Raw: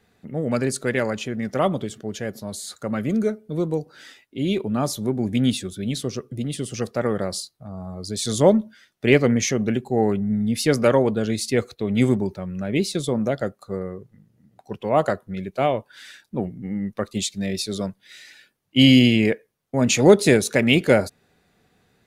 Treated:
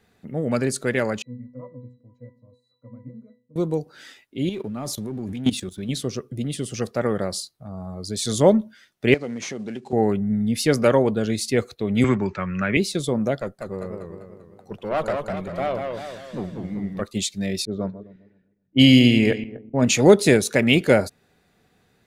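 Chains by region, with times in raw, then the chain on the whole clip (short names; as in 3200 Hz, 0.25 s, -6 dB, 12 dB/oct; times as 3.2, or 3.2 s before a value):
1.22–3.56 bell 3500 Hz -13 dB 2 oct + octave resonator B, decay 0.36 s
4.49–5.89 sample leveller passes 1 + level quantiser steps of 15 dB
9.14–9.93 CVSD 64 kbps + compressor 2.5:1, threshold -30 dBFS + BPF 170–7000 Hz
12.04–12.77 brick-wall FIR low-pass 8000 Hz + band shelf 1700 Hz +13.5 dB + three-band squash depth 40%
13.39–17.02 tube stage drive 17 dB, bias 0.55 + warbling echo 0.196 s, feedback 51%, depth 154 cents, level -4.5 dB
17.65–19.85 regenerating reverse delay 0.128 s, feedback 45%, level -12.5 dB + low-pass opened by the level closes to 340 Hz, open at -13.5 dBFS
whole clip: dry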